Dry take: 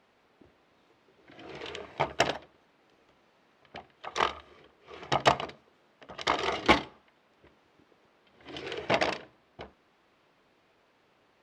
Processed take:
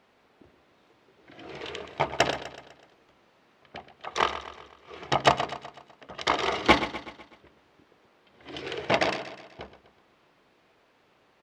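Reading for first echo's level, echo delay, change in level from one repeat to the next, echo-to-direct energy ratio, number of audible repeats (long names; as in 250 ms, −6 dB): −12.5 dB, 125 ms, −6.0 dB, −11.5 dB, 4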